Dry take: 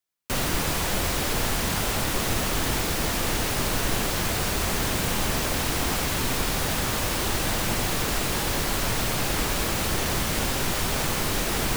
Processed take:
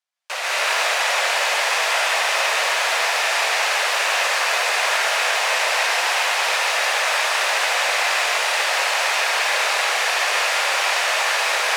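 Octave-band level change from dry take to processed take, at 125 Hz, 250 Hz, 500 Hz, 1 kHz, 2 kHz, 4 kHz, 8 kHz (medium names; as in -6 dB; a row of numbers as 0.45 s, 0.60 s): under -40 dB, under -20 dB, +4.5 dB, +9.0 dB, +12.0 dB, +8.0 dB, +3.0 dB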